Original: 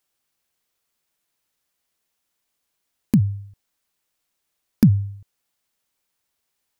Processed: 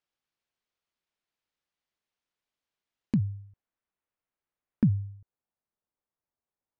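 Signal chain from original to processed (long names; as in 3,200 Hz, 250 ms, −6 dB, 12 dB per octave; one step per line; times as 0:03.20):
low-pass filter 4,400 Hz 12 dB per octave, from 0:03.16 1,900 Hz, from 0:04.94 1,100 Hz
level −9 dB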